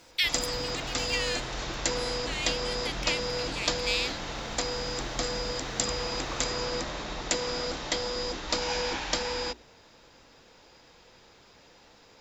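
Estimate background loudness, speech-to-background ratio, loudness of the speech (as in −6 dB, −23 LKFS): −31.0 LKFS, −2.0 dB, −33.0 LKFS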